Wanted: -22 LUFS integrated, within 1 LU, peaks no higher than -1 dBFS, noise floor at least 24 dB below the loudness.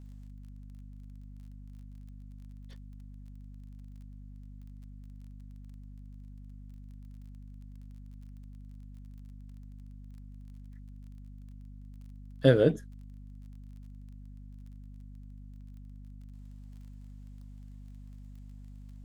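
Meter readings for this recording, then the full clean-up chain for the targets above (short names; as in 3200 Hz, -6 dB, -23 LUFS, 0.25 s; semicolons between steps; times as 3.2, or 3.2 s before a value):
ticks 25/s; hum 50 Hz; harmonics up to 250 Hz; hum level -44 dBFS; loudness -25.5 LUFS; peak -7.5 dBFS; loudness target -22.0 LUFS
-> de-click; de-hum 50 Hz, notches 5; gain +3.5 dB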